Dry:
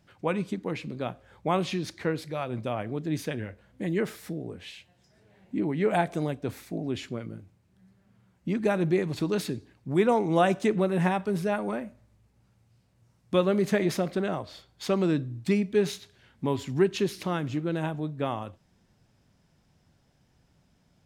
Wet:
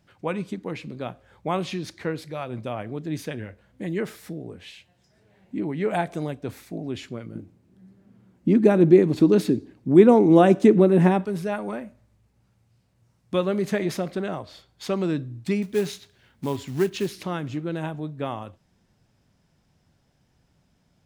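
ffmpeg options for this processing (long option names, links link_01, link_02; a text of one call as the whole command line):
ffmpeg -i in.wav -filter_complex "[0:a]asettb=1/sr,asplit=3[link_01][link_02][link_03];[link_01]atrim=end=7.354[link_04];[link_02]atrim=start=7.35:end=11.25,asetpts=PTS-STARTPTS,afade=type=in:duration=0.004:curve=qsin,afade=type=out:start_time=3.896:duration=0.004:curve=qsin,equalizer=frequency=290:width=0.81:gain=13.5[link_05];[link_03]atrim=start=11.246[link_06];[link_04][link_05]acrossfade=duration=0.004:curve1=hsin:curve2=qsin[link_07];[link_07][link_06]acrossfade=duration=0.004:curve1=qsin:curve2=hsin,asettb=1/sr,asplit=3[link_08][link_09][link_10];[link_08]atrim=end=15.624[link_11];[link_09]atrim=start=15.62:end=17.15,asetpts=PTS-STARTPTS,afade=type=in:duration=0.004:curve=qsin,afade=type=out:start_time=1.526:duration=0.004:curve=qsin,acrusher=bits=5:mode=log:mix=0:aa=0.000001[link_12];[link_10]atrim=start=17.146[link_13];[link_11][link_12]acrossfade=duration=0.004:curve1=hsin:curve2=qsin[link_14];[link_14][link_13]acrossfade=duration=0.004:curve1=qsin:curve2=hsin" out.wav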